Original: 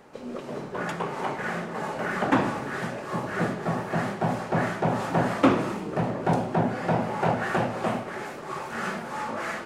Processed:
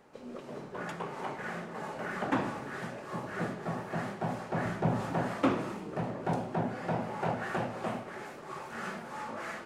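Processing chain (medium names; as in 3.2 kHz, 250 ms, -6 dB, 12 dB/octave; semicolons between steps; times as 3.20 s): 4.65–5.13 s: bass shelf 220 Hz +9.5 dB; trim -8 dB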